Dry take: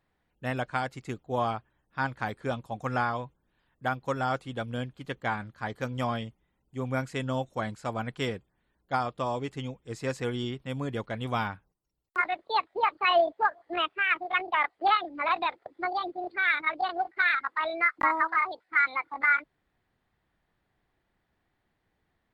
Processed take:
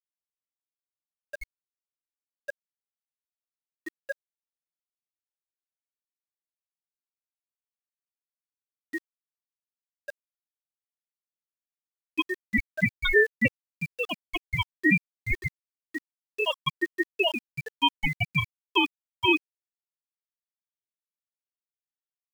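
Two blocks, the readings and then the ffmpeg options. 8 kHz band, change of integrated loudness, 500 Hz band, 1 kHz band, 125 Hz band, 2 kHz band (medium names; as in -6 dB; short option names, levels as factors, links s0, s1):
no reading, +2.0 dB, -2.0 dB, -10.0 dB, -2.0 dB, -1.0 dB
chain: -af "afftfilt=real='re*gte(hypot(re,im),0.447)':imag='im*gte(hypot(re,im),0.447)':win_size=1024:overlap=0.75,aeval=exprs='val(0)*sin(2*PI*1100*n/s)':c=same,aeval=exprs='val(0)*gte(abs(val(0)),0.00422)':c=same,volume=2"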